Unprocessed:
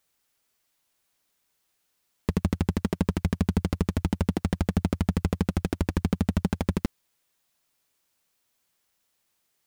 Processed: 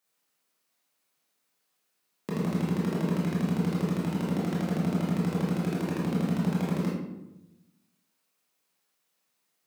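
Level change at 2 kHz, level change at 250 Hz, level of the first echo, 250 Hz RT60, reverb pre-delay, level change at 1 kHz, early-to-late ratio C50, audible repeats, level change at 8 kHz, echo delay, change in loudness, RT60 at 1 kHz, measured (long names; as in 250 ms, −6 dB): −1.5 dB, +0.5 dB, no echo audible, 1.2 s, 18 ms, −0.5 dB, 0.5 dB, no echo audible, −3.0 dB, no echo audible, −1.0 dB, 0.90 s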